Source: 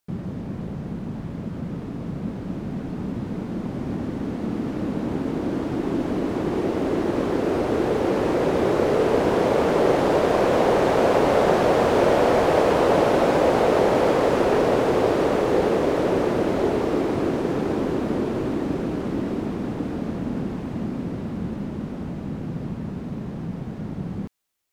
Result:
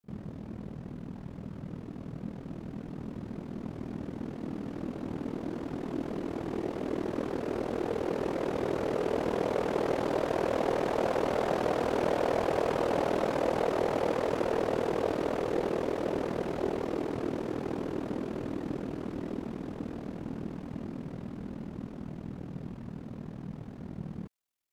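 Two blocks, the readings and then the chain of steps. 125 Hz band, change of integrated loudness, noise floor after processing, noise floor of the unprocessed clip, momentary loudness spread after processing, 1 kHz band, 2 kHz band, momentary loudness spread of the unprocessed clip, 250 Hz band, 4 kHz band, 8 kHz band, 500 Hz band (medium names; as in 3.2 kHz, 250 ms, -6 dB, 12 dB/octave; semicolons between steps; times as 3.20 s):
-10.5 dB, -10.5 dB, -44 dBFS, -33 dBFS, 13 LU, -10.5 dB, -10.5 dB, 13 LU, -10.5 dB, -10.5 dB, -10.5 dB, -10.5 dB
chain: ring modulator 20 Hz; pre-echo 45 ms -20.5 dB; trim -7.5 dB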